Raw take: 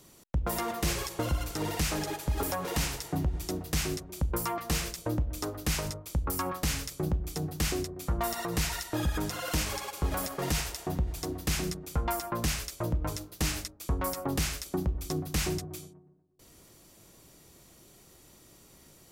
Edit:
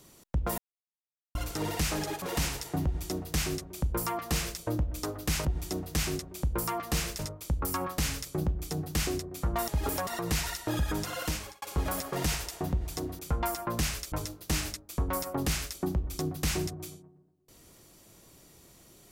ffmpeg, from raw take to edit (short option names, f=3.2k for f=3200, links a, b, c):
-filter_complex "[0:a]asplit=11[a][b][c][d][e][f][g][h][i][j][k];[a]atrim=end=0.58,asetpts=PTS-STARTPTS,afade=t=out:st=0.576:d=0.004:c=hsin[l];[b]atrim=start=0.58:end=1.35,asetpts=PTS-STARTPTS,volume=0[m];[c]atrim=start=1.35:end=2.222,asetpts=PTS-STARTPTS,afade=t=in:d=0.004:c=hsin[n];[d]atrim=start=2.608:end=5.842[o];[e]atrim=start=3.228:end=4.972[p];[f]atrim=start=5.838:end=8.332[q];[g]atrim=start=2.218:end=2.612[r];[h]atrim=start=8.328:end=9.88,asetpts=PTS-STARTPTS,afade=t=out:st=1.112:d=0.44[s];[i]atrim=start=9.88:end=11.452,asetpts=PTS-STARTPTS,afade=t=in:d=0.004:c=hsin[t];[j]atrim=start=11.838:end=12.772[u];[k]atrim=start=13.028[v];[l][m][n]concat=n=3:v=0:a=1[w];[w][o]acrossfade=d=0.004:c1=hsin:c2=hsin[x];[x][p]acrossfade=d=0.004:c1=hsin:c2=hsin[y];[y][q]acrossfade=d=0.004:c1=hsin:c2=hsin[z];[z][r]acrossfade=d=0.004:c1=hsin:c2=hsin[aa];[s][t]concat=n=2:v=0:a=1[ab];[aa][ab]acrossfade=d=0.004:c1=hsin:c2=hsin[ac];[ac][u]acrossfade=d=0.004:c1=hsin:c2=hsin[ad];[ad][v]acrossfade=d=0.004:c1=hsin:c2=hsin"